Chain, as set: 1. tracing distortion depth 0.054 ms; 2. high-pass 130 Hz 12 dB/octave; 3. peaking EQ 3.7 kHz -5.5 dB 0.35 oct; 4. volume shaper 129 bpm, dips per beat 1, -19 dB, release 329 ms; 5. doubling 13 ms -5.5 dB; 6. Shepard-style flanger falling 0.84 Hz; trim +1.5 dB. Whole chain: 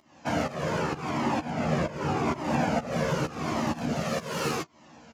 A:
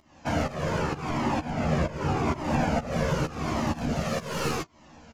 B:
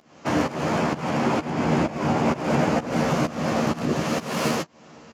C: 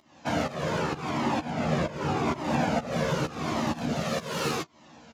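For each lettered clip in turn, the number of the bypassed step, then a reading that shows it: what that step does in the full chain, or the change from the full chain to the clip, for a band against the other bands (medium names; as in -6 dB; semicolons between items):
2, 125 Hz band +3.0 dB; 6, 250 Hz band +2.0 dB; 3, 4 kHz band +2.0 dB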